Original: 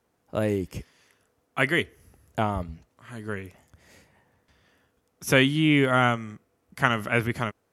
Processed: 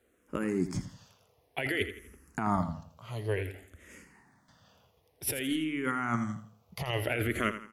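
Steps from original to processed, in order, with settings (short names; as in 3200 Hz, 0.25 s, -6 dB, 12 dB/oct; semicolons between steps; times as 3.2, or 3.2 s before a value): negative-ratio compressor -28 dBFS, ratio -1; feedback echo 83 ms, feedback 38%, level -11.5 dB; endless phaser -0.55 Hz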